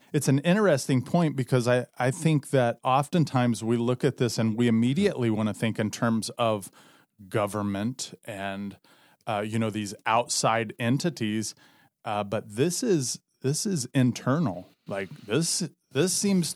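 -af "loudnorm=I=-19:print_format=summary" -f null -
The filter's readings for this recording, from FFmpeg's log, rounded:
Input Integrated:    -26.5 LUFS
Input True Peak:      -8.8 dBTP
Input LRA:             3.7 LU
Input Threshold:     -36.8 LUFS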